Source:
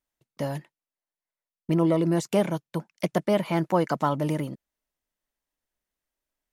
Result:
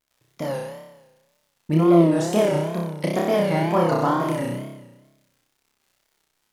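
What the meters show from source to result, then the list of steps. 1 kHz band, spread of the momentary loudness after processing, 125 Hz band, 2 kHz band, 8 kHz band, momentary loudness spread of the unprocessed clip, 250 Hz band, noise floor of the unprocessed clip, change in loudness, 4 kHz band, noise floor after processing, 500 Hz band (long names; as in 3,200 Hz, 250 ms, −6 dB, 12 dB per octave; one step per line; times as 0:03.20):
+5.0 dB, 15 LU, +4.0 dB, +5.0 dB, +5.0 dB, 13 LU, +5.0 dB, below −85 dBFS, +5.0 dB, +4.5 dB, −73 dBFS, +5.5 dB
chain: surface crackle 90 per second −52 dBFS
flutter between parallel walls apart 5.3 metres, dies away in 1.1 s
tape wow and flutter 120 cents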